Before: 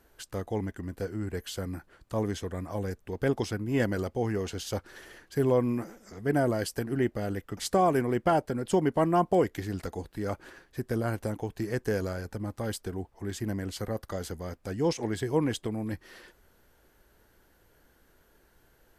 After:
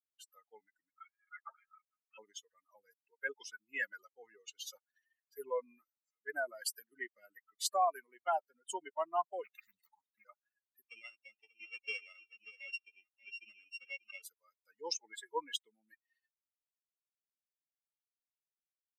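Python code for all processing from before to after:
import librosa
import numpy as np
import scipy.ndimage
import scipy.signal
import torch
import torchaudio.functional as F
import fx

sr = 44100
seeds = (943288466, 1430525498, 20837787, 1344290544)

y = fx.chain(x, sr, fx.highpass_res(hz=2400.0, q=9.8),
    fx.freq_invert(carrier_hz=3700), at=(0.9, 2.18))
y = fx.chain(y, sr, fx.comb(ms=1.1, depth=0.9),
    fx.doppler_dist(depth_ms=0.7), at=(9.44, 10.25))
y = fx.chain(y, sr, fx.sample_sort(block=16),
    fx.lowpass(hz=4700.0, slope=12),
    fx.echo_single(ms=586, db=-6.5), at=(10.88, 14.22))
y = fx.bin_expand(y, sr, power=3.0)
y = scipy.signal.sosfilt(scipy.signal.butter(4, 670.0, 'highpass', fs=sr, output='sos'), y)
y = fx.rider(y, sr, range_db=4, speed_s=0.5)
y = F.gain(torch.from_numpy(y), 1.5).numpy()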